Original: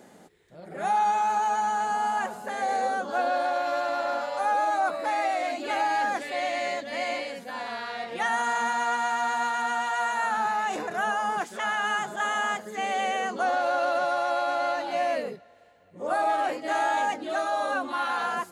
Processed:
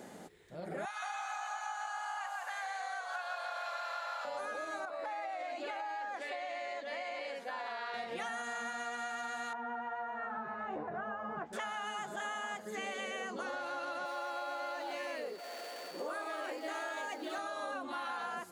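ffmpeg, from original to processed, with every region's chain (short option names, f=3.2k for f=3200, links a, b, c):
-filter_complex "[0:a]asettb=1/sr,asplit=3[a][b][c];[a]atrim=end=0.854[d];[b]atrim=start=0.85:end=4.25,asetpts=PTS-STARTPTS,afade=t=in:d=0.004:c=qsin,afade=t=out:st=3.396:d=0.004:c=qsin,acrossover=split=6900[e][f];[f]acompressor=threshold=-56dB:ratio=4:attack=1:release=60[g];[e][g]amix=inputs=2:normalize=0,highpass=f=950:w=0.5412,highpass=f=950:w=1.3066,asplit=5[h][i][j][k][l];[i]adelay=170,afreqshift=-44,volume=-4dB[m];[j]adelay=340,afreqshift=-88,volume=-13.6dB[n];[k]adelay=510,afreqshift=-132,volume=-23.3dB[o];[l]adelay=680,afreqshift=-176,volume=-32.9dB[p];[h][m][n][o][p]amix=inputs=5:normalize=0,atrim=end_sample=149940[q];[c]atrim=start=4.246[r];[d][q]acrossfade=d=0.004:c1=hsin:c2=qsin[s];[s][r]acrossfade=d=0.004:c1=qsin:c2=hsin,asettb=1/sr,asplit=3[t][u][v];[t]atrim=end=4.854[w];[u]atrim=start=4.85:end=7.94,asetpts=PTS-STARTPTS,afade=t=in:d=0.004:c=qsin,afade=t=out:st=3.086:d=0.004:c=qsin,highpass=440,aemphasis=mode=reproduction:type=50kf,acompressor=threshold=-31dB:ratio=4:attack=3.2:release=140:knee=1:detection=peak[x];[v]atrim=start=7.936[y];[w][x]acrossfade=d=0.004:c1=hsin:c2=qsin[z];[z][y]acrossfade=d=0.004:c1=qsin:c2=hsin,asettb=1/sr,asplit=3[aa][ab][ac];[aa]atrim=end=9.534[ad];[ab]atrim=start=9.53:end=11.53,asetpts=PTS-STARTPTS,afade=t=in:d=0.004:c=qsin,afade=t=out:st=1.996:d=0.004:c=qsin,lowpass=1.1k,asubboost=boost=7:cutoff=120,asplit=2[ae][af];[af]adelay=13,volume=-6dB[ag];[ae][ag]amix=inputs=2:normalize=0,atrim=end_sample=88200[ah];[ac]atrim=start=11.526[ai];[ad][ah]acrossfade=d=0.004:c1=hsin:c2=qsin[aj];[aj][ai]acrossfade=d=0.004:c1=qsin:c2=hsin,asettb=1/sr,asplit=3[ak][al][am];[ak]atrim=end=14.054[an];[al]atrim=start=14.05:end=17.38,asetpts=PTS-STARTPTS,afade=t=in:d=0.004:c=qsin,afade=t=out:st=3.326:d=0.004:c=qsin,aeval=exprs='val(0)+0.5*0.0075*sgn(val(0))':c=same,highpass=f=290:w=0.5412,highpass=f=290:w=1.3066,aeval=exprs='val(0)+0.002*sin(2*PI*4500*n/s)':c=same[ao];[am]atrim=start=17.376[ap];[an][ao]acrossfade=d=0.004:c1=hsin:c2=qsin[aq];[aq][ap]acrossfade=d=0.004:c1=qsin:c2=hsin,afftfilt=real='re*lt(hypot(re,im),0.355)':imag='im*lt(hypot(re,im),0.355)':win_size=1024:overlap=0.75,acompressor=threshold=-39dB:ratio=6,volume=1.5dB"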